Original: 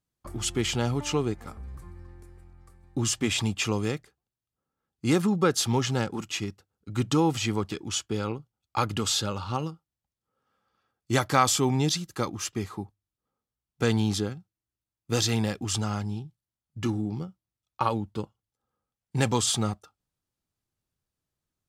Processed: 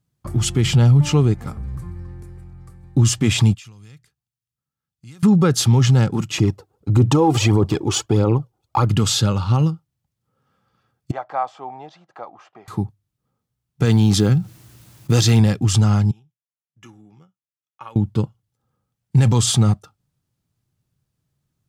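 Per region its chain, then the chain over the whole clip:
0:00.64–0:01.09: parametric band 150 Hz +11.5 dB 0.33 octaves + notch filter 6,500 Hz, Q 14
0:03.54–0:05.23: downward compressor 3 to 1, threshold −41 dBFS + guitar amp tone stack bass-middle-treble 5-5-5
0:06.38–0:08.85: flat-topped bell 560 Hz +10.5 dB 2.3 octaves + phase shifter 1.6 Hz, delay 2.9 ms, feedback 57%
0:11.11–0:12.68: upward compression, threshold −24 dBFS + four-pole ladder band-pass 790 Hz, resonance 65%
0:13.85–0:15.40: one scale factor per block 7 bits + low-shelf EQ 90 Hz −10.5 dB + envelope flattener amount 50%
0:16.11–0:17.96: moving average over 10 samples + first difference
whole clip: parametric band 130 Hz +13.5 dB 1.3 octaves; brickwall limiter −13 dBFS; level +6 dB

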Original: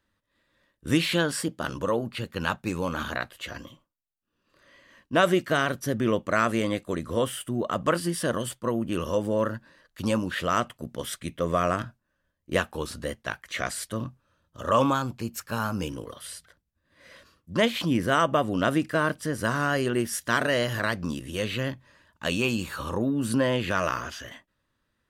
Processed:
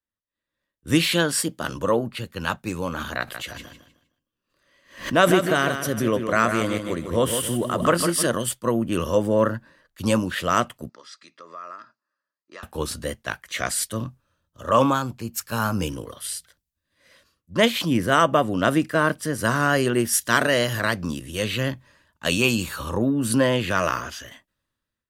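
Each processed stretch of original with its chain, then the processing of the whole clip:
0:03.19–0:08.27: repeating echo 154 ms, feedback 34%, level −7 dB + background raised ahead of every attack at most 110 dB per second
0:10.89–0:12.63: loudspeaker in its box 460–6,100 Hz, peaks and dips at 500 Hz −6 dB, 1,300 Hz +9 dB, 3,200 Hz −8 dB, 4,700 Hz +10 dB + notch comb filter 750 Hz + downward compressor 2.5 to 1, threshold −44 dBFS
whole clip: high-shelf EQ 6,700 Hz +5.5 dB; automatic gain control gain up to 10.5 dB; multiband upward and downward expander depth 40%; level −4.5 dB

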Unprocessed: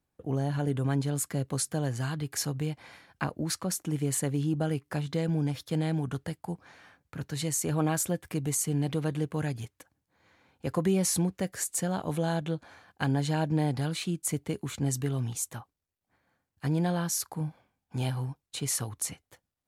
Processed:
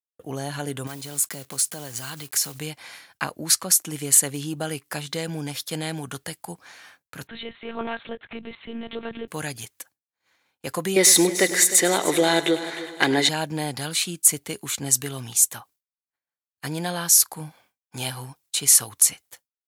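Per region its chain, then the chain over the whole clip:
0:00.87–0:02.59: one scale factor per block 5 bits + notch filter 1,700 Hz, Q 19 + downward compressor 4 to 1, threshold −33 dBFS
0:07.27–0:09.28: one-pitch LPC vocoder at 8 kHz 230 Hz + high-frequency loss of the air 110 metres
0:10.96–0:13.29: mid-hump overdrive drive 12 dB, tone 3,700 Hz, clips at −13.5 dBFS + hollow resonant body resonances 360/2,000/3,700 Hz, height 16 dB, ringing for 25 ms + echo machine with several playback heads 102 ms, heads first and third, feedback 48%, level −15 dB
whole clip: downward expander −55 dBFS; spectral tilt +3.5 dB per octave; level +5 dB

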